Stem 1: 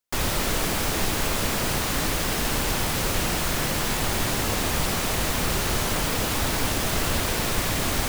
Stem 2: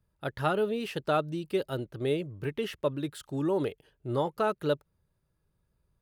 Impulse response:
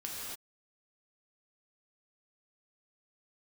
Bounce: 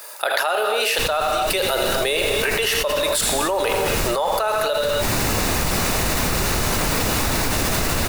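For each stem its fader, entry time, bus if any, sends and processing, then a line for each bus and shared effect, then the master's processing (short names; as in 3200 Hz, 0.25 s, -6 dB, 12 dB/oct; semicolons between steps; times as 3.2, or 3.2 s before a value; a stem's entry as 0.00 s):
-7.5 dB, 0.85 s, no send, echo send -19 dB, auto duck -20 dB, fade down 1.75 s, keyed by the second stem
+1.5 dB, 0.00 s, send -6 dB, echo send -10 dB, Chebyshev high-pass 600 Hz, order 3; high shelf 3500 Hz +9.5 dB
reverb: on, pre-delay 3 ms
echo: echo 81 ms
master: notch 3200 Hz, Q 10; fast leveller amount 100%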